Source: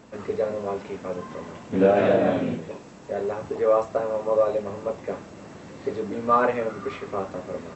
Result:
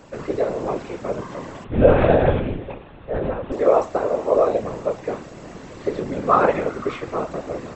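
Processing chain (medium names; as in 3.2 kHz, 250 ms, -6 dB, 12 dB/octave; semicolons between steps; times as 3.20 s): 1.64–3.52 s: monotone LPC vocoder at 8 kHz 260 Hz; whisper effect; trim +4 dB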